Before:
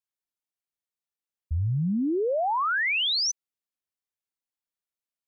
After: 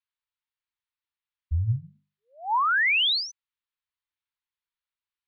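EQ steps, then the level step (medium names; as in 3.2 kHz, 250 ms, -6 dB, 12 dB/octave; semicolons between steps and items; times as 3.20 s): Chebyshev band-stop 120–900 Hz, order 4; steep low-pass 4.3 kHz; hum notches 50/100/150/200 Hz; +3.5 dB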